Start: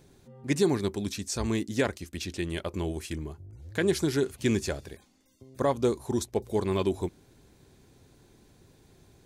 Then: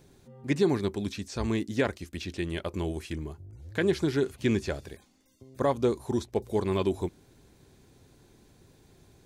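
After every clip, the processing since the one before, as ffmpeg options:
ffmpeg -i in.wav -filter_complex "[0:a]acrossover=split=4500[link_01][link_02];[link_02]acompressor=threshold=-50dB:ratio=4:attack=1:release=60[link_03];[link_01][link_03]amix=inputs=2:normalize=0" out.wav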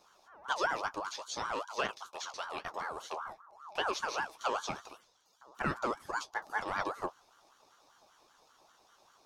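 ffmpeg -i in.wav -af "superequalizer=11b=2:14b=3.98,flanger=delay=8.7:depth=7.7:regen=37:speed=1:shape=triangular,aeval=exprs='val(0)*sin(2*PI*1000*n/s+1000*0.3/5.1*sin(2*PI*5.1*n/s))':channel_layout=same,volume=-1.5dB" out.wav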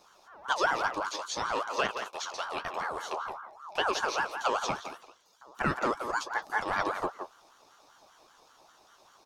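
ffmpeg -i in.wav -filter_complex "[0:a]asplit=2[link_01][link_02];[link_02]adelay=170,highpass=300,lowpass=3400,asoftclip=type=hard:threshold=-26dB,volume=-7dB[link_03];[link_01][link_03]amix=inputs=2:normalize=0,volume=4.5dB" out.wav

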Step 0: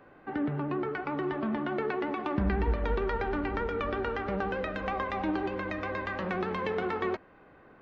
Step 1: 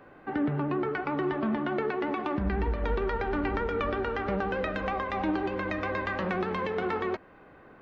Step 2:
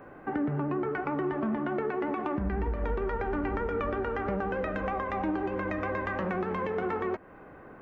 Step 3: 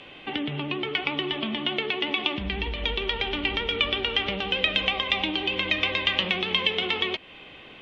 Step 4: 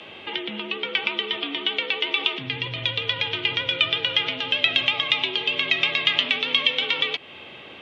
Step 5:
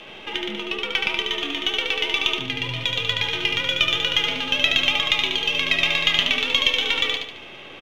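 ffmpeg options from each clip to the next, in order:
ffmpeg -i in.wav -af "alimiter=limit=-22dB:level=0:latency=1:release=253,volume=3dB" out.wav
ffmpeg -i in.wav -af "equalizer=frequency=4100:width_type=o:width=1.2:gain=-12.5,acompressor=threshold=-36dB:ratio=2,volume=4.5dB" out.wav
ffmpeg -i in.wav -af "lowpass=frequency=3300:width_type=q:width=5.4,aexciter=amount=15.7:drive=4.9:freq=2400,volume=-1.5dB" out.wav
ffmpeg -i in.wav -filter_complex "[0:a]acrossover=split=1300[link_01][link_02];[link_01]alimiter=level_in=9.5dB:limit=-24dB:level=0:latency=1:release=67,volume=-9.5dB[link_03];[link_03][link_02]amix=inputs=2:normalize=0,afreqshift=66,volume=4dB" out.wav
ffmpeg -i in.wav -af "aeval=exprs='if(lt(val(0),0),0.708*val(0),val(0))':channel_layout=same,aecho=1:1:73|146|219|292|365:0.596|0.25|0.105|0.0441|0.0185,volume=1.5dB" out.wav

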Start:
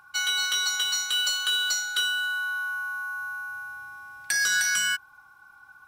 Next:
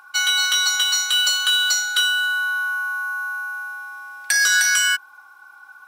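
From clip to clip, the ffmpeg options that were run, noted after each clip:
ffmpeg -i in.wav -af "highpass=420,volume=7dB" out.wav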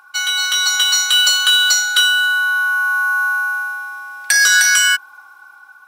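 ffmpeg -i in.wav -af "dynaudnorm=framelen=270:gausssize=5:maxgain=10.5dB" out.wav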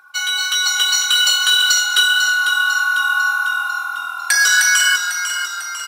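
ffmpeg -i in.wav -filter_complex "[0:a]flanger=delay=0.5:depth=2.4:regen=-34:speed=1.7:shape=sinusoidal,asplit=8[link_01][link_02][link_03][link_04][link_05][link_06][link_07][link_08];[link_02]adelay=498,afreqshift=-40,volume=-8dB[link_09];[link_03]adelay=996,afreqshift=-80,volume=-13.2dB[link_10];[link_04]adelay=1494,afreqshift=-120,volume=-18.4dB[link_11];[link_05]adelay=1992,afreqshift=-160,volume=-23.6dB[link_12];[link_06]adelay=2490,afreqshift=-200,volume=-28.8dB[link_13];[link_07]adelay=2988,afreqshift=-240,volume=-34dB[link_14];[link_08]adelay=3486,afreqshift=-280,volume=-39.2dB[link_15];[link_01][link_09][link_10][link_11][link_12][link_13][link_14][link_15]amix=inputs=8:normalize=0,volume=2dB" out.wav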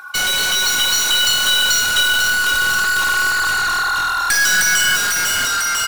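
ffmpeg -i in.wav -af "asoftclip=type=tanh:threshold=-17dB,aeval=exprs='0.141*(cos(1*acos(clip(val(0)/0.141,-1,1)))-cos(1*PI/2))+0.0178*(cos(2*acos(clip(val(0)/0.141,-1,1)))-cos(2*PI/2))+0.0447*(cos(5*acos(clip(val(0)/0.141,-1,1)))-cos(5*PI/2))':channel_layout=same,volume=4.5dB" out.wav

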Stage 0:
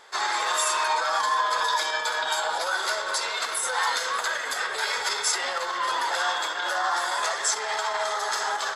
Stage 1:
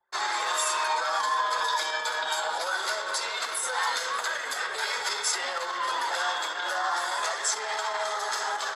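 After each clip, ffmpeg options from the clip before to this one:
ffmpeg -i in.wav -af "anlmdn=0.398,highpass=frequency=100:poles=1,volume=-2.5dB" out.wav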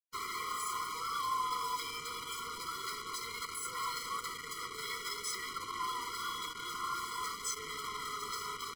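ffmpeg -i in.wav -af "acrusher=bits=4:mix=0:aa=0.5,afftfilt=real='re*eq(mod(floor(b*sr/1024/480),2),0)':imag='im*eq(mod(floor(b*sr/1024/480),2),0)':win_size=1024:overlap=0.75,volume=-7dB" out.wav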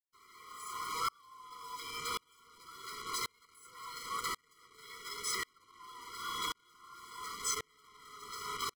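ffmpeg -i in.wav -af "aeval=exprs='val(0)*pow(10,-36*if(lt(mod(-0.92*n/s,1),2*abs(-0.92)/1000),1-mod(-0.92*n/s,1)/(2*abs(-0.92)/1000),(mod(-0.92*n/s,1)-2*abs(-0.92)/1000)/(1-2*abs(-0.92)/1000))/20)':channel_layout=same,volume=6.5dB" out.wav

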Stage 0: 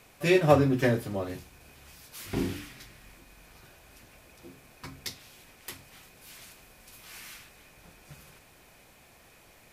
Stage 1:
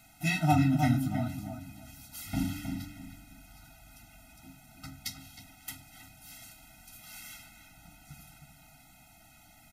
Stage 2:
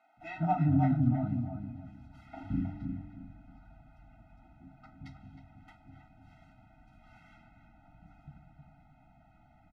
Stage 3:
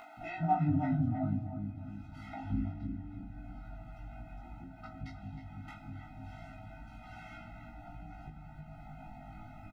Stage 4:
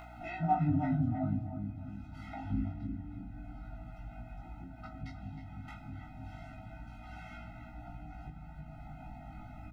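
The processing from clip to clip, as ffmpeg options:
ffmpeg -i in.wav -filter_complex "[0:a]highshelf=frequency=6000:gain=5.5,asplit=2[link_01][link_02];[link_02]adelay=314,lowpass=frequency=1500:poles=1,volume=-5.5dB,asplit=2[link_03][link_04];[link_04]adelay=314,lowpass=frequency=1500:poles=1,volume=0.27,asplit=2[link_05][link_06];[link_06]adelay=314,lowpass=frequency=1500:poles=1,volume=0.27,asplit=2[link_07][link_08];[link_08]adelay=314,lowpass=frequency=1500:poles=1,volume=0.27[link_09];[link_01][link_03][link_05][link_07][link_09]amix=inputs=5:normalize=0,afftfilt=real='re*eq(mod(floor(b*sr/1024/310),2),0)':imag='im*eq(mod(floor(b*sr/1024/310),2),0)':win_size=1024:overlap=0.75" out.wav
ffmpeg -i in.wav -filter_complex "[0:a]lowpass=1100,acrossover=split=400[link_01][link_02];[link_01]adelay=170[link_03];[link_03][link_02]amix=inputs=2:normalize=0" out.wav
ffmpeg -i in.wav -filter_complex "[0:a]acompressor=mode=upward:threshold=-34dB:ratio=2.5,flanger=delay=17:depth=2.2:speed=0.26,asplit=2[link_01][link_02];[link_02]adelay=20,volume=-5dB[link_03];[link_01][link_03]amix=inputs=2:normalize=0" out.wav
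ffmpeg -i in.wav -af "aeval=exprs='val(0)+0.00282*(sin(2*PI*60*n/s)+sin(2*PI*2*60*n/s)/2+sin(2*PI*3*60*n/s)/3+sin(2*PI*4*60*n/s)/4+sin(2*PI*5*60*n/s)/5)':channel_layout=same" out.wav

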